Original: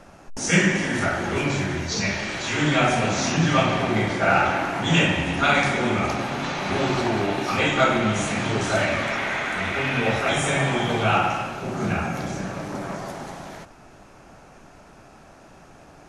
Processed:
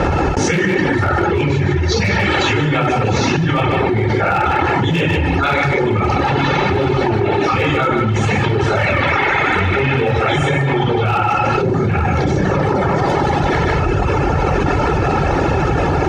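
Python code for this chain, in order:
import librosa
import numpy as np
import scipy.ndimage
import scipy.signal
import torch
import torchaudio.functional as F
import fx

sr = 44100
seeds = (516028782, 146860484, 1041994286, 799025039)

p1 = scipy.signal.sosfilt(scipy.signal.butter(2, 3500.0, 'lowpass', fs=sr, output='sos'), x)
p2 = fx.hum_notches(p1, sr, base_hz=60, count=5)
p3 = fx.dereverb_blind(p2, sr, rt60_s=1.6)
p4 = scipy.signal.sosfilt(scipy.signal.butter(4, 48.0, 'highpass', fs=sr, output='sos'), p3)
p5 = fx.low_shelf(p4, sr, hz=320.0, db=10.0)
p6 = p5 + 0.56 * np.pad(p5, (int(2.3 * sr / 1000.0), 0))[:len(p5)]
p7 = fx.rider(p6, sr, range_db=5, speed_s=0.5)
p8 = np.clip(p7, -10.0 ** (-12.5 / 20.0), 10.0 ** (-12.5 / 20.0))
p9 = p8 + fx.echo_single(p8, sr, ms=151, db=-8.0, dry=0)
y = fx.env_flatten(p9, sr, amount_pct=100)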